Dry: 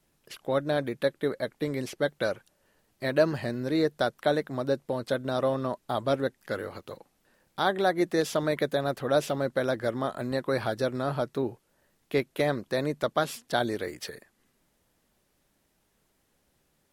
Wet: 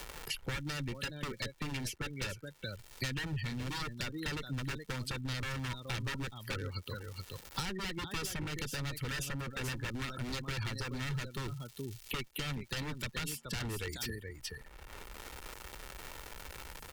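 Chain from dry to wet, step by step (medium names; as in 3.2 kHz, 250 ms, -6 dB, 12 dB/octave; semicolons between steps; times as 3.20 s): expander on every frequency bin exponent 1.5; treble shelf 5.6 kHz +4 dB; spectral gate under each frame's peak -25 dB strong; in parallel at -1 dB: gain riding 0.5 s; on the sum: peak limiter -18 dBFS, peak gain reduction 10.5 dB; on a send: delay 424 ms -13.5 dB; on the sum: wavefolder -27.5 dBFS; amplifier tone stack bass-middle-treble 6-0-2; crackle 340 per s -71 dBFS; comb 2.2 ms, depth 32%; three bands compressed up and down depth 100%; trim +15 dB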